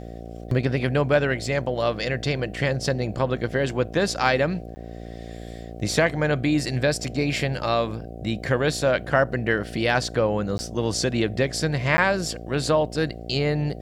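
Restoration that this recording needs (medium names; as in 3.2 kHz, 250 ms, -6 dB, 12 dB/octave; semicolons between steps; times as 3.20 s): de-hum 57.6 Hz, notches 13; interpolate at 4.75/10.58/11.97 s, 10 ms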